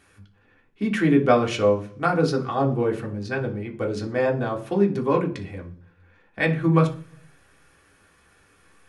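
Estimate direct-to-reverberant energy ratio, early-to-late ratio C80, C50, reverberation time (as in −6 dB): 0.0 dB, 18.5 dB, 13.5 dB, 0.50 s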